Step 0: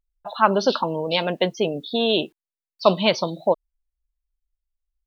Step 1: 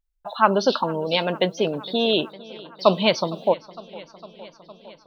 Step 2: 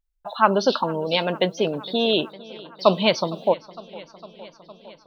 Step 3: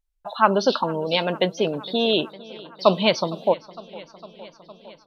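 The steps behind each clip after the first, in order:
modulated delay 458 ms, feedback 73%, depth 87 cents, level -20.5 dB
no audible change
resampled via 32 kHz

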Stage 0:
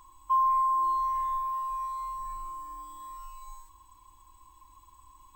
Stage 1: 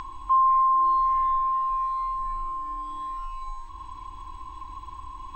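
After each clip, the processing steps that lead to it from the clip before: in parallel at 0 dB: peak limiter -26 dBFS, peak gain reduction 7 dB; on the sum: upward compressor, threshold -29 dBFS; distance through air 190 m; trim +2 dB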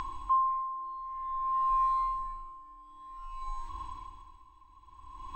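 logarithmic tremolo 0.54 Hz, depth 19 dB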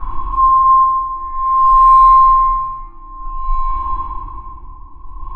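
band-stop 1.8 kHz, Q 22; level-controlled noise filter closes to 780 Hz, open at -24.5 dBFS; reverberation RT60 2.8 s, pre-delay 3 ms, DRR -18.5 dB; trim -4.5 dB

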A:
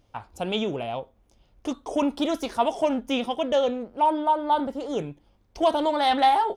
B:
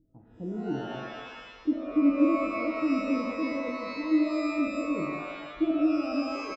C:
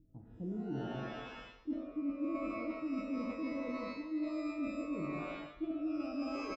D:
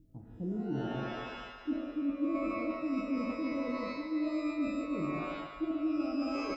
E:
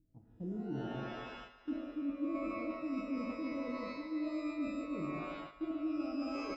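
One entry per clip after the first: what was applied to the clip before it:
four-pole ladder low-pass 350 Hz, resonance 55%; comb 6.1 ms, depth 34%; pitch-shifted reverb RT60 1.3 s, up +12 st, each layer -2 dB, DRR 2.5 dB; trim +2 dB
bass shelf 280 Hz +10 dB; reverse; compression 5:1, threshold -30 dBFS, peak gain reduction 15.5 dB; reverse; trim -6 dB
thinning echo 145 ms, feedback 76%, high-pass 460 Hz, level -8 dB; trim +4 dB
gate -44 dBFS, range -7 dB; trim -4.5 dB

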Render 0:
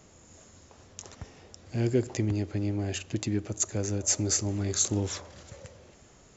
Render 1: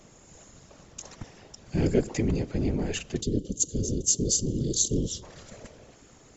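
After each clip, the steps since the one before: time-frequency box 3.21–5.23 s, 470–2800 Hz -25 dB; whisper effect; trim +2 dB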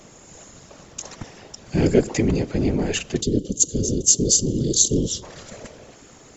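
bass shelf 130 Hz -6 dB; trim +8 dB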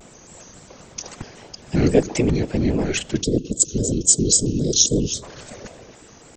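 vibrato with a chosen wave square 3.7 Hz, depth 160 cents; trim +1 dB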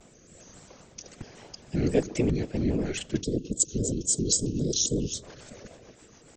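rotary cabinet horn 1.2 Hz, later 7 Hz, at 1.64 s; trim -5.5 dB

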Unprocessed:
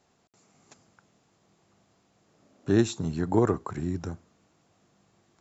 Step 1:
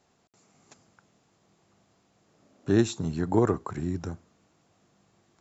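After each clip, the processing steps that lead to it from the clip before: no audible change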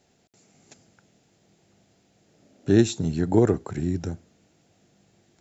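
peaking EQ 1.1 kHz -12.5 dB 0.6 oct; trim +4.5 dB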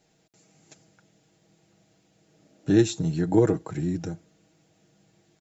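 comb 6.3 ms, depth 60%; trim -2.5 dB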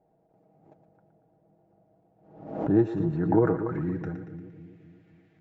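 two-band feedback delay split 410 Hz, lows 261 ms, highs 116 ms, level -9.5 dB; low-pass sweep 740 Hz -> 2.1 kHz, 2.02–4.66 s; swell ahead of each attack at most 79 dB/s; trim -3.5 dB

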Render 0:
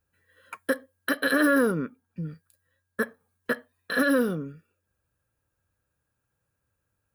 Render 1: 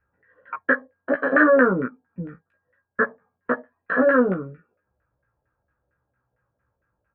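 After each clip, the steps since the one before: LFO low-pass saw down 4.4 Hz 580–1800 Hz; resonant high shelf 3.2 kHz -9.5 dB, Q 1.5; doubling 16 ms -2.5 dB; trim +1.5 dB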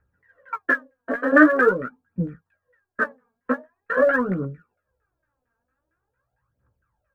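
phaser 0.45 Hz, delay 4.5 ms, feedback 72%; trim -3.5 dB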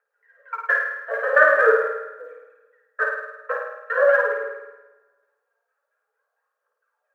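rippled Chebyshev high-pass 420 Hz, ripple 3 dB; flutter echo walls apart 9.1 m, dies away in 0.92 s; reverberation RT60 1.5 s, pre-delay 5 ms, DRR 13 dB

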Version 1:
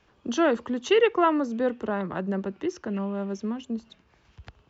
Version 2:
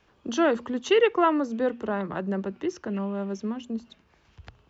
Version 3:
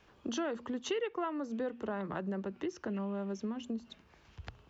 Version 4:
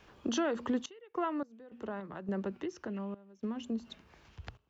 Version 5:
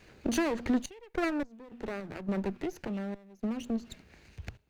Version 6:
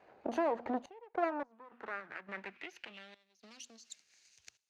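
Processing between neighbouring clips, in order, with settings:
hum notches 60/120/180/240 Hz
compression 4:1, threshold -35 dBFS, peak gain reduction 16.5 dB
random-step tremolo, depth 95%; trim +6 dB
comb filter that takes the minimum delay 0.45 ms; trim +4 dB
band-pass sweep 760 Hz -> 6.3 kHz, 1.14–3.90 s; trim +5.5 dB

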